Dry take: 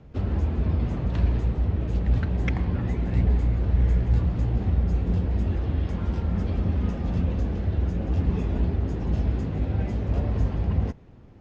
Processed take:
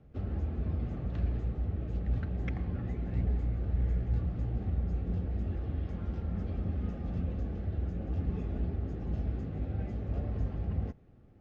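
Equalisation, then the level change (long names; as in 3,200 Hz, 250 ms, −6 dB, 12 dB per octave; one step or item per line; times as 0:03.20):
Butterworth band-reject 970 Hz, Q 6.4
high-shelf EQ 2,800 Hz −8 dB
−9.0 dB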